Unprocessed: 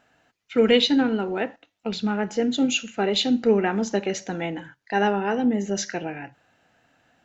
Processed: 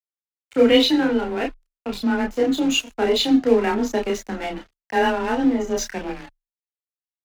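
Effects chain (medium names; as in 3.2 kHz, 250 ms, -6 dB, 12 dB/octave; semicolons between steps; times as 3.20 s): dynamic bell 130 Hz, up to +7 dB, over -42 dBFS, Q 1.9; crossover distortion -35.5 dBFS; chorus voices 6, 0.3 Hz, delay 30 ms, depth 2.6 ms; frequency shift +21 Hz; trim +6 dB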